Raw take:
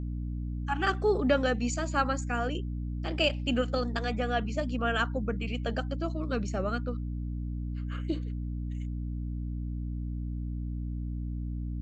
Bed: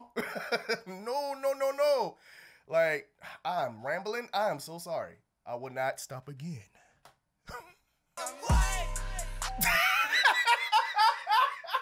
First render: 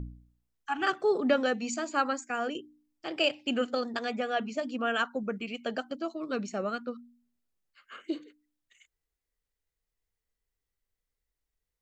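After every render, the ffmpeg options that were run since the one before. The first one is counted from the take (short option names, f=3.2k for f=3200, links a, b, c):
-af "bandreject=f=60:t=h:w=4,bandreject=f=120:t=h:w=4,bandreject=f=180:t=h:w=4,bandreject=f=240:t=h:w=4,bandreject=f=300:t=h:w=4"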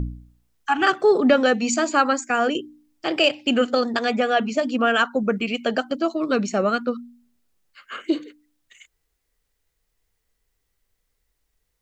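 -filter_complex "[0:a]asplit=2[a][b];[b]alimiter=limit=-23.5dB:level=0:latency=1:release=366,volume=1dB[c];[a][c]amix=inputs=2:normalize=0,acontrast=48"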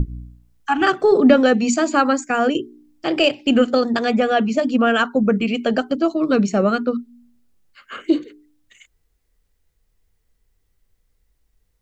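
-af "lowshelf=f=360:g=10,bandreject=f=60:t=h:w=6,bandreject=f=120:t=h:w=6,bandreject=f=180:t=h:w=6,bandreject=f=240:t=h:w=6,bandreject=f=300:t=h:w=6,bandreject=f=360:t=h:w=6,bandreject=f=420:t=h:w=6"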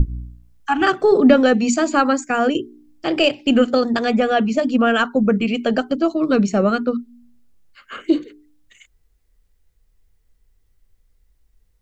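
-af "lowshelf=f=77:g=7"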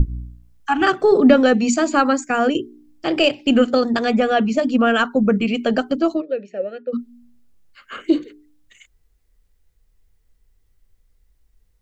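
-filter_complex "[0:a]asplit=3[a][b][c];[a]afade=t=out:st=6.2:d=0.02[d];[b]asplit=3[e][f][g];[e]bandpass=f=530:t=q:w=8,volume=0dB[h];[f]bandpass=f=1.84k:t=q:w=8,volume=-6dB[i];[g]bandpass=f=2.48k:t=q:w=8,volume=-9dB[j];[h][i][j]amix=inputs=3:normalize=0,afade=t=in:st=6.2:d=0.02,afade=t=out:st=6.92:d=0.02[k];[c]afade=t=in:st=6.92:d=0.02[l];[d][k][l]amix=inputs=3:normalize=0"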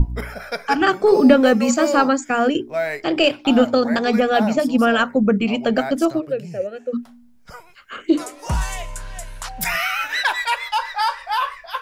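-filter_complex "[1:a]volume=4dB[a];[0:a][a]amix=inputs=2:normalize=0"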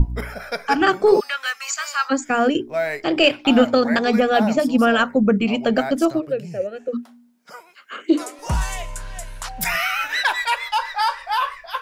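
-filter_complex "[0:a]asplit=3[a][b][c];[a]afade=t=out:st=1.19:d=0.02[d];[b]highpass=f=1.3k:w=0.5412,highpass=f=1.3k:w=1.3066,afade=t=in:st=1.19:d=0.02,afade=t=out:st=2.1:d=0.02[e];[c]afade=t=in:st=2.1:d=0.02[f];[d][e][f]amix=inputs=3:normalize=0,asettb=1/sr,asplit=3[g][h][i];[g]atrim=end=3.224[j];[h]atrim=start=3.22:end=3.99,asetpts=PTS-STARTPTS,afade=t=in:d=0.004:c=qsin,afade=t=out:st=0.766:d=0.004:c=qsin,equalizer=f=2.1k:w=1.5:g=5[k];[i]atrim=start=3.986[l];[j][k]acrossfade=d=0.004:c1=hsin:c2=qsin[m];[m][l]acrossfade=d=0.004:c1=qsin:c2=hsin,asettb=1/sr,asplit=3[n][o][p];[n]atrim=end=6.884[q];[o]atrim=start=6.88:end=8.39,asetpts=PTS-STARTPTS,afade=t=in:d=0.004:c=qsin,afade=t=out:st=1.506:d=0.004:c=qsin,highpass=f=220:w=0.5412,highpass=f=220:w=1.3066[r];[p]atrim=start=8.386[s];[q][r]acrossfade=d=0.004:c1=hsin:c2=qsin[t];[t][s]acrossfade=d=0.004:c1=qsin:c2=hsin"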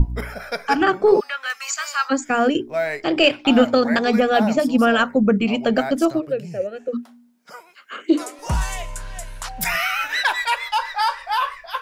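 -filter_complex "[0:a]asettb=1/sr,asplit=3[a][b][c];[a]atrim=end=0.834[d];[b]atrim=start=0.83:end=1.5,asetpts=PTS-STARTPTS,afade=t=in:d=0.004:c=qsin,afade=t=out:st=0.666:d=0.004:c=qsin,highshelf=f=3.6k:g=-10.5[e];[c]atrim=start=1.496[f];[d][e]acrossfade=d=0.004:c1=hsin:c2=qsin[g];[g][f]acrossfade=d=0.004:c1=qsin:c2=hsin,asettb=1/sr,asplit=3[h][i][j];[h]atrim=end=2.844[k];[i]atrim=start=2.84:end=3.55,asetpts=PTS-STARTPTS,afade=t=in:d=0.004:c=qsin,afade=t=out:st=0.706:d=0.004:c=qsin,equalizer=f=13k:t=o:w=0.33:g=-9[l];[j]atrim=start=3.546[m];[k][l]acrossfade=d=0.004:c1=hsin:c2=qsin[n];[n][m]acrossfade=d=0.004:c1=qsin:c2=hsin"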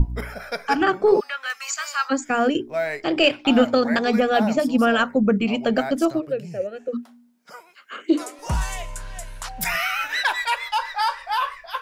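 -af "volume=-2dB"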